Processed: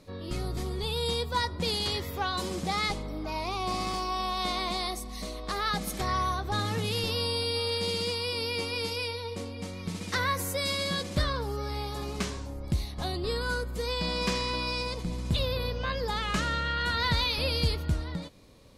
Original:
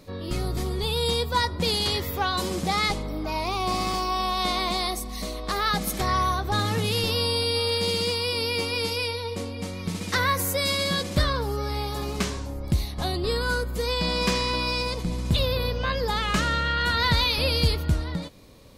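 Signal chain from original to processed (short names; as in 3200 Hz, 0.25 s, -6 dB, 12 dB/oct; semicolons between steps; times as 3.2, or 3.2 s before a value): LPF 12000 Hz 12 dB/oct; gain -5 dB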